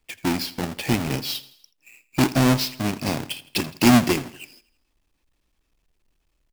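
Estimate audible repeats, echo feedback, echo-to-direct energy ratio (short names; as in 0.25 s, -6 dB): 3, 50%, -17.5 dB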